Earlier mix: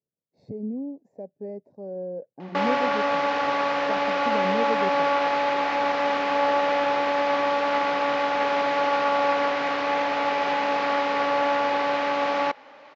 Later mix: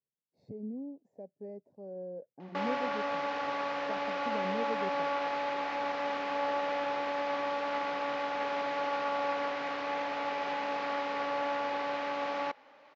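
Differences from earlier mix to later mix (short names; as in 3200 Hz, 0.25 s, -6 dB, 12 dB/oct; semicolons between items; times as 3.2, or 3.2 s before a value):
speech -8.5 dB; background -10.0 dB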